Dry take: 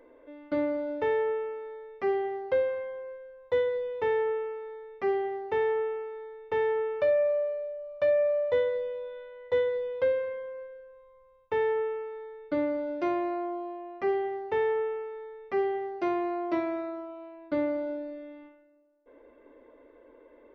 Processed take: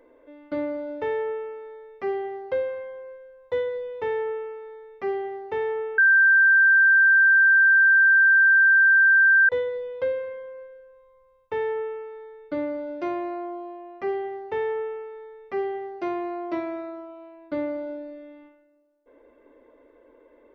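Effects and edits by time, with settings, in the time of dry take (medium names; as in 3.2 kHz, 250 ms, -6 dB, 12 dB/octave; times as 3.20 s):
5.98–9.49 s: bleep 1.57 kHz -13 dBFS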